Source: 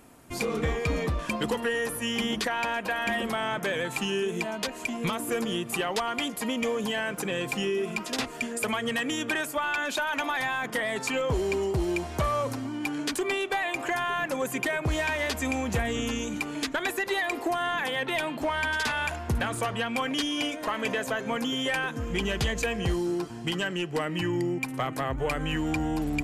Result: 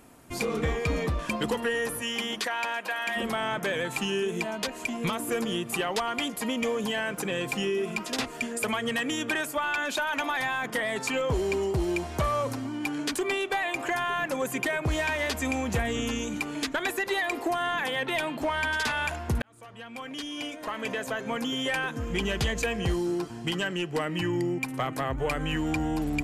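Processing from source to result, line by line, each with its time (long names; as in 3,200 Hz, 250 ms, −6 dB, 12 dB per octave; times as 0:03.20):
0:02.01–0:03.15: high-pass filter 400 Hz → 980 Hz 6 dB per octave
0:19.42–0:22.40: fade in equal-power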